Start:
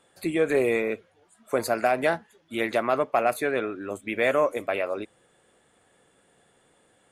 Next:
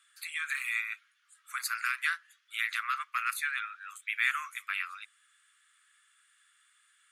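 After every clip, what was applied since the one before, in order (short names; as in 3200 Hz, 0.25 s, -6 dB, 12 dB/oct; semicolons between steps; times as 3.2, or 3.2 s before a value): steep high-pass 1200 Hz 72 dB/oct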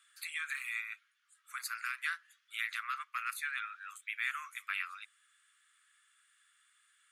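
vocal rider within 5 dB 0.5 s; gain -5 dB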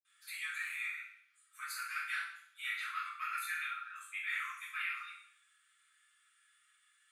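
reverb RT60 0.65 s, pre-delay 46 ms; gain -3.5 dB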